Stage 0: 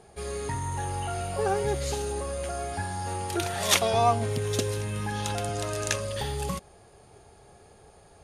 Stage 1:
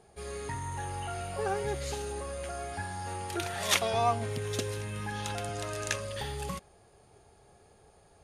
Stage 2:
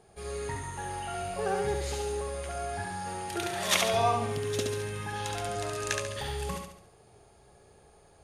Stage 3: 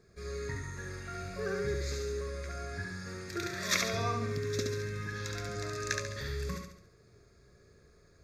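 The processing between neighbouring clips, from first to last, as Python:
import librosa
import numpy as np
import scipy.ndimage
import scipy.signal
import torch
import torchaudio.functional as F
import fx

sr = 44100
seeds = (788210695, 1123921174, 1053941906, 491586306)

y1 = fx.dynamic_eq(x, sr, hz=1900.0, q=0.79, threshold_db=-44.0, ratio=4.0, max_db=4)
y1 = y1 * librosa.db_to_amplitude(-6.0)
y2 = fx.echo_feedback(y1, sr, ms=70, feedback_pct=44, wet_db=-4)
y3 = fx.fixed_phaser(y2, sr, hz=3000.0, stages=6)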